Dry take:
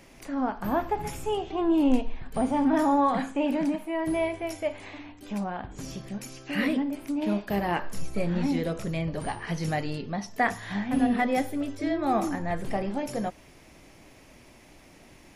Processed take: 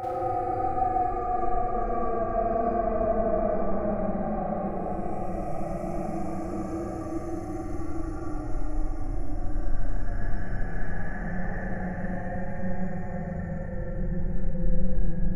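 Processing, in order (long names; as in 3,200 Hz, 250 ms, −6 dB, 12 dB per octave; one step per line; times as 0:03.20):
source passing by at 0:03.95, 5 m/s, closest 5.2 metres
RIAA equalisation playback
phaser with its sweep stopped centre 970 Hz, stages 6
extreme stretch with random phases 46×, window 0.05 s, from 0:12.16
four-comb reverb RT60 1.4 s, combs from 33 ms, DRR −5.5 dB
level +9 dB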